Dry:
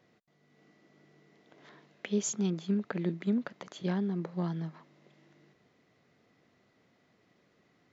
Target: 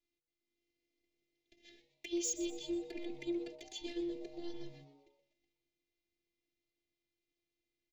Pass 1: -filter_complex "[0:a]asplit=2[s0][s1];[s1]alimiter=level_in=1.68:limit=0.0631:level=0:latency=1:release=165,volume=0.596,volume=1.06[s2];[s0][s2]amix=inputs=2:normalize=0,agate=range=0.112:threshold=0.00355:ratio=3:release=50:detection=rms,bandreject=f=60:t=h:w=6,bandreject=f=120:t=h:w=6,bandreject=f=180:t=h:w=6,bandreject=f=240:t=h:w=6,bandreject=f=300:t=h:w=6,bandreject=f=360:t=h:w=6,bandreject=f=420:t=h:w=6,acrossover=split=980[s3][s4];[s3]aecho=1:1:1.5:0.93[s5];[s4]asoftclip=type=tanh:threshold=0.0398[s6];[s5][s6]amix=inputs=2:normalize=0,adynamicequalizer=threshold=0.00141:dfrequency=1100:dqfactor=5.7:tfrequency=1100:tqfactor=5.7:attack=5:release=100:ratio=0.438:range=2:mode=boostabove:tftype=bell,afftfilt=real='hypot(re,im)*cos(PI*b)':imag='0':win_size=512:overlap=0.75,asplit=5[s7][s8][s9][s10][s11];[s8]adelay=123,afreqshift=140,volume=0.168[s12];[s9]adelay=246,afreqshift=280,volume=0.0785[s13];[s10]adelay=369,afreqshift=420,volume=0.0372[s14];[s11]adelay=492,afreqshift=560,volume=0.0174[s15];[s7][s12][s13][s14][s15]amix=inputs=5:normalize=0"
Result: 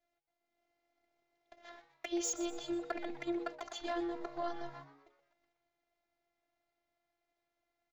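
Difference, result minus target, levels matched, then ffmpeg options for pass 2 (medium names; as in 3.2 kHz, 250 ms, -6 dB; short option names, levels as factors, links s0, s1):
1 kHz band +17.0 dB
-filter_complex "[0:a]asplit=2[s0][s1];[s1]alimiter=level_in=1.68:limit=0.0631:level=0:latency=1:release=165,volume=0.596,volume=1.06[s2];[s0][s2]amix=inputs=2:normalize=0,agate=range=0.112:threshold=0.00355:ratio=3:release=50:detection=rms,bandreject=f=60:t=h:w=6,bandreject=f=120:t=h:w=6,bandreject=f=180:t=h:w=6,bandreject=f=240:t=h:w=6,bandreject=f=300:t=h:w=6,bandreject=f=360:t=h:w=6,bandreject=f=420:t=h:w=6,acrossover=split=980[s3][s4];[s3]aecho=1:1:1.5:0.93[s5];[s4]asoftclip=type=tanh:threshold=0.0398[s6];[s5][s6]amix=inputs=2:normalize=0,adynamicequalizer=threshold=0.00141:dfrequency=1100:dqfactor=5.7:tfrequency=1100:tqfactor=5.7:attack=5:release=100:ratio=0.438:range=2:mode=boostabove:tftype=bell,asuperstop=centerf=1000:order=8:qfactor=0.57,afftfilt=real='hypot(re,im)*cos(PI*b)':imag='0':win_size=512:overlap=0.75,asplit=5[s7][s8][s9][s10][s11];[s8]adelay=123,afreqshift=140,volume=0.168[s12];[s9]adelay=246,afreqshift=280,volume=0.0785[s13];[s10]adelay=369,afreqshift=420,volume=0.0372[s14];[s11]adelay=492,afreqshift=560,volume=0.0174[s15];[s7][s12][s13][s14][s15]amix=inputs=5:normalize=0"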